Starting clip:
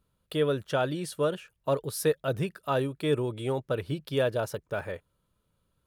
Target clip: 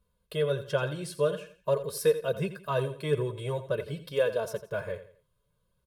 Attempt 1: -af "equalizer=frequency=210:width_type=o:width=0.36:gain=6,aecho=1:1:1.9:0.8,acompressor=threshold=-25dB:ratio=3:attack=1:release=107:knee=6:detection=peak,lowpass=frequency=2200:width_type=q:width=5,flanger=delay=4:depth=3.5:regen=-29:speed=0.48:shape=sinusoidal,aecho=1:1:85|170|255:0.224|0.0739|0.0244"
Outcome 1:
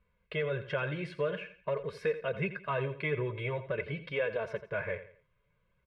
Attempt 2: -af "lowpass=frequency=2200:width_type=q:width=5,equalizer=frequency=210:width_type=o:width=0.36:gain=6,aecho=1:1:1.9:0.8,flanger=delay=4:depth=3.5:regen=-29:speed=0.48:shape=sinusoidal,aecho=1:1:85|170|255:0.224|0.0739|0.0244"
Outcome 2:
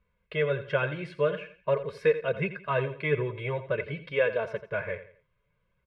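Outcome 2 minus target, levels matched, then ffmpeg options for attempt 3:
2,000 Hz band +6.0 dB
-af "equalizer=frequency=210:width_type=o:width=0.36:gain=6,aecho=1:1:1.9:0.8,flanger=delay=4:depth=3.5:regen=-29:speed=0.48:shape=sinusoidal,aecho=1:1:85|170|255:0.224|0.0739|0.0244"

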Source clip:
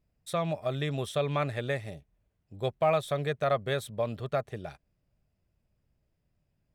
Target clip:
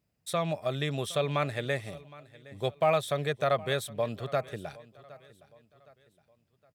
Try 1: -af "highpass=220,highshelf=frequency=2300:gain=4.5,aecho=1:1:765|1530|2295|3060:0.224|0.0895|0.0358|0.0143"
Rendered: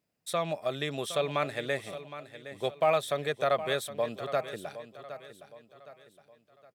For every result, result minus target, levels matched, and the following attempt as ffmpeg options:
125 Hz band −6.5 dB; echo-to-direct +7.5 dB
-af "highpass=96,highshelf=frequency=2300:gain=4.5,aecho=1:1:765|1530|2295|3060:0.224|0.0895|0.0358|0.0143"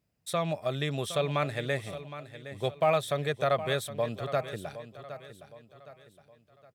echo-to-direct +7.5 dB
-af "highpass=96,highshelf=frequency=2300:gain=4.5,aecho=1:1:765|1530|2295:0.0944|0.0378|0.0151"

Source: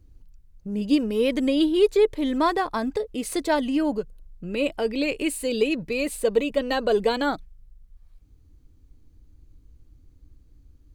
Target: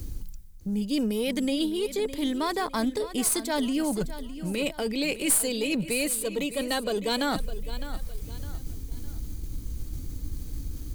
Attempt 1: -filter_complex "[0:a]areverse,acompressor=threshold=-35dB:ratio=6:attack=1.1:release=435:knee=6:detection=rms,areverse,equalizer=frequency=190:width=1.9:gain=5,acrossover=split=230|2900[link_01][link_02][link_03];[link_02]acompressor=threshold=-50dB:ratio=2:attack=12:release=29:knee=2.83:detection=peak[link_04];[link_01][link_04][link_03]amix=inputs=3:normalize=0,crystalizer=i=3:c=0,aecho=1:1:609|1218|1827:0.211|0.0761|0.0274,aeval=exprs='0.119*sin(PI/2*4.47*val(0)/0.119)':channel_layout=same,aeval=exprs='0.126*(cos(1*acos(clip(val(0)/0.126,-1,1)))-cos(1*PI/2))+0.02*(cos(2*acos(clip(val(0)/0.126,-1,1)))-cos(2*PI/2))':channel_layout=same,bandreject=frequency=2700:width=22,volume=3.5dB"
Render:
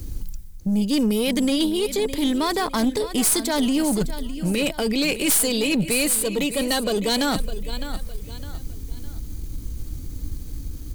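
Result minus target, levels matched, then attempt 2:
downward compressor: peak gain reduction −9 dB
-filter_complex "[0:a]areverse,acompressor=threshold=-46dB:ratio=6:attack=1.1:release=435:knee=6:detection=rms,areverse,equalizer=frequency=190:width=1.9:gain=5,acrossover=split=230|2900[link_01][link_02][link_03];[link_02]acompressor=threshold=-50dB:ratio=2:attack=12:release=29:knee=2.83:detection=peak[link_04];[link_01][link_04][link_03]amix=inputs=3:normalize=0,crystalizer=i=3:c=0,aecho=1:1:609|1218|1827:0.211|0.0761|0.0274,aeval=exprs='0.119*sin(PI/2*4.47*val(0)/0.119)':channel_layout=same,aeval=exprs='0.126*(cos(1*acos(clip(val(0)/0.126,-1,1)))-cos(1*PI/2))+0.02*(cos(2*acos(clip(val(0)/0.126,-1,1)))-cos(2*PI/2))':channel_layout=same,bandreject=frequency=2700:width=22,volume=3.5dB"

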